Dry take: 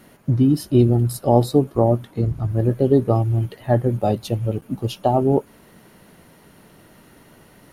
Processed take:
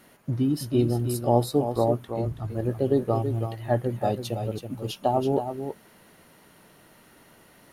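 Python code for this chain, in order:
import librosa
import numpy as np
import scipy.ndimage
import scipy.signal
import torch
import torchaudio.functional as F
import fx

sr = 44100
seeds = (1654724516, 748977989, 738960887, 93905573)

y = fx.low_shelf(x, sr, hz=400.0, db=-7.0)
y = y + 10.0 ** (-8.5 / 20.0) * np.pad(y, (int(327 * sr / 1000.0), 0))[:len(y)]
y = y * librosa.db_to_amplitude(-3.0)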